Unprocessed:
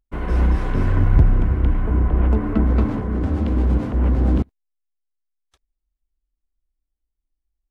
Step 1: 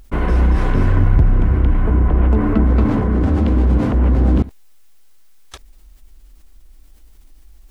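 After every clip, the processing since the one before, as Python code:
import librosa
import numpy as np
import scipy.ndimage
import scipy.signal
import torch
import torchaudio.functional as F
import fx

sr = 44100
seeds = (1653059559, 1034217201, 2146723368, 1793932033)

y = fx.env_flatten(x, sr, amount_pct=50)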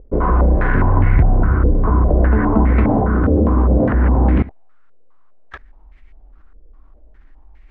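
y = fx.filter_held_lowpass(x, sr, hz=4.9, low_hz=490.0, high_hz=2100.0)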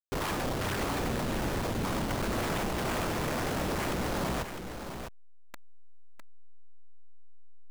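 y = fx.delta_hold(x, sr, step_db=-21.5)
y = 10.0 ** (-19.5 / 20.0) * (np.abs((y / 10.0 ** (-19.5 / 20.0) + 3.0) % 4.0 - 2.0) - 1.0)
y = y + 10.0 ** (-8.0 / 20.0) * np.pad(y, (int(655 * sr / 1000.0), 0))[:len(y)]
y = y * 10.0 ** (-7.5 / 20.0)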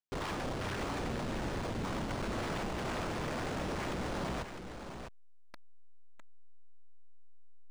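y = np.interp(np.arange(len(x)), np.arange(len(x))[::3], x[::3])
y = y * 10.0 ** (-5.0 / 20.0)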